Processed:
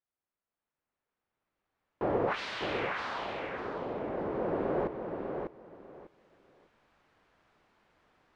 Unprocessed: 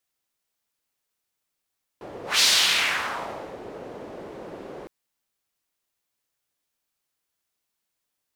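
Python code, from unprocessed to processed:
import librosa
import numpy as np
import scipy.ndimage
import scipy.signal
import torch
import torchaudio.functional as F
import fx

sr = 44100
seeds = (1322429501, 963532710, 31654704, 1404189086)

y = fx.recorder_agc(x, sr, target_db=-12.0, rise_db_per_s=9.0, max_gain_db=30)
y = scipy.signal.sosfilt(scipy.signal.butter(2, 1600.0, 'lowpass', fs=sr, output='sos'), y)
y = fx.echo_feedback(y, sr, ms=598, feedback_pct=20, wet_db=-5.5)
y = y * librosa.db_to_amplitude(-8.5)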